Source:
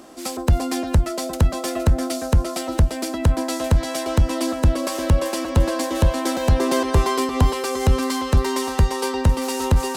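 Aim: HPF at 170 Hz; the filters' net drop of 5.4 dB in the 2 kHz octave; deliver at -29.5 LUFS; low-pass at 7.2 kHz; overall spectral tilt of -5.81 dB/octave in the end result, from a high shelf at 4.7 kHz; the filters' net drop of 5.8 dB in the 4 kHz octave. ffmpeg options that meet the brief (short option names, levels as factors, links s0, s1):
-af "highpass=170,lowpass=7200,equalizer=f=2000:t=o:g=-5.5,equalizer=f=4000:t=o:g=-3,highshelf=f=4700:g=-4.5,volume=0.631"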